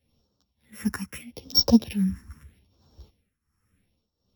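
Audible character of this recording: a buzz of ramps at a fixed pitch in blocks of 8 samples; phasing stages 4, 0.78 Hz, lowest notch 590–2100 Hz; tremolo triangle 1.4 Hz, depth 85%; a shimmering, thickened sound

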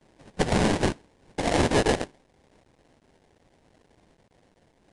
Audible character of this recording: a quantiser's noise floor 10-bit, dither triangular; tremolo saw down 0.82 Hz, depth 30%; aliases and images of a low sample rate 1300 Hz, jitter 20%; Vorbis

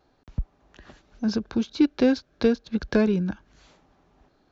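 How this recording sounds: noise floor -65 dBFS; spectral tilt -6.0 dB/oct

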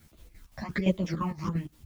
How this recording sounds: phasing stages 8, 1.3 Hz, lowest notch 410–1700 Hz; a quantiser's noise floor 12-bit, dither triangular; chopped level 5.8 Hz, depth 65%, duty 60%; a shimmering, thickened sound

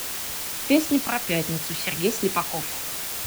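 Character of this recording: phasing stages 2, 1.5 Hz, lowest notch 360–1900 Hz; a quantiser's noise floor 6-bit, dither triangular

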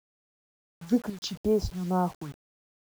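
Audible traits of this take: phasing stages 2, 2.1 Hz, lowest notch 460–4100 Hz; chopped level 0.82 Hz, depth 65%, duty 90%; a quantiser's noise floor 8-bit, dither none

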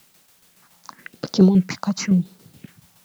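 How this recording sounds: phasing stages 4, 0.94 Hz, lowest notch 380–2400 Hz; a quantiser's noise floor 10-bit, dither triangular; tremolo saw down 7.1 Hz, depth 55%

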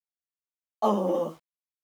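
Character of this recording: a quantiser's noise floor 10-bit, dither none; a shimmering, thickened sound

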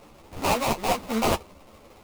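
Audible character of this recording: aliases and images of a low sample rate 1700 Hz, jitter 20%; a shimmering, thickened sound

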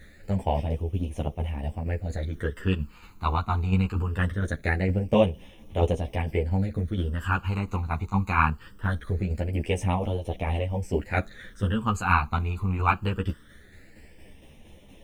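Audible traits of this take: a quantiser's noise floor 12-bit, dither triangular; phasing stages 12, 0.22 Hz, lowest notch 550–1500 Hz; tremolo saw down 4.3 Hz, depth 45%; a shimmering, thickened sound

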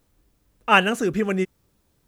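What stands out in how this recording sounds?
noise floor -67 dBFS; spectral tilt -3.0 dB/oct

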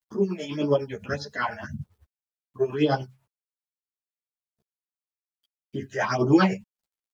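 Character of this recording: phasing stages 6, 1.8 Hz, lowest notch 270–2300 Hz; a quantiser's noise floor 12-bit, dither none; tremolo triangle 10 Hz, depth 70%; a shimmering, thickened sound

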